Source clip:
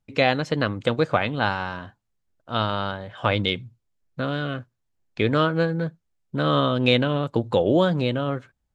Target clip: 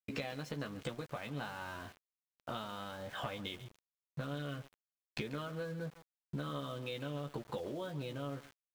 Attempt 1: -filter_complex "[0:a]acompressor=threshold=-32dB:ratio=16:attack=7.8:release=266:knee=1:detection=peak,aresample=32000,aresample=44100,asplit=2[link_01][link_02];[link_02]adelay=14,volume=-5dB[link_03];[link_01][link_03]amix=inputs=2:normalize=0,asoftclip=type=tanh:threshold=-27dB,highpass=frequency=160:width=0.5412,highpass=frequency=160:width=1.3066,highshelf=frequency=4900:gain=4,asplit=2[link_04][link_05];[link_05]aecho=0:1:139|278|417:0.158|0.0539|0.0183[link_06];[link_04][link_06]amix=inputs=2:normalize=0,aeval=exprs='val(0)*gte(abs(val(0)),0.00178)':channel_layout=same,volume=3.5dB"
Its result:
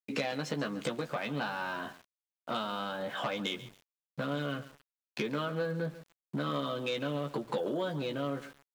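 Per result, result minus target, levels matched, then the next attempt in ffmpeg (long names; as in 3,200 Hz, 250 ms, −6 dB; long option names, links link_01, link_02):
downward compressor: peak gain reduction −9.5 dB; 125 Hz band −4.0 dB
-filter_complex "[0:a]acompressor=threshold=-42dB:ratio=16:attack=7.8:release=266:knee=1:detection=peak,aresample=32000,aresample=44100,asplit=2[link_01][link_02];[link_02]adelay=14,volume=-5dB[link_03];[link_01][link_03]amix=inputs=2:normalize=0,asoftclip=type=tanh:threshold=-27dB,highpass=frequency=160:width=0.5412,highpass=frequency=160:width=1.3066,highshelf=frequency=4900:gain=4,asplit=2[link_04][link_05];[link_05]aecho=0:1:139|278|417:0.158|0.0539|0.0183[link_06];[link_04][link_06]amix=inputs=2:normalize=0,aeval=exprs='val(0)*gte(abs(val(0)),0.00178)':channel_layout=same,volume=3.5dB"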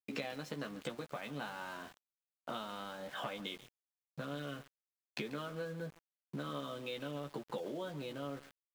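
125 Hz band −4.5 dB
-filter_complex "[0:a]acompressor=threshold=-42dB:ratio=16:attack=7.8:release=266:knee=1:detection=peak,aresample=32000,aresample=44100,asplit=2[link_01][link_02];[link_02]adelay=14,volume=-5dB[link_03];[link_01][link_03]amix=inputs=2:normalize=0,asoftclip=type=tanh:threshold=-27dB,highshelf=frequency=4900:gain=4,asplit=2[link_04][link_05];[link_05]aecho=0:1:139|278|417:0.158|0.0539|0.0183[link_06];[link_04][link_06]amix=inputs=2:normalize=0,aeval=exprs='val(0)*gte(abs(val(0)),0.00178)':channel_layout=same,volume=3.5dB"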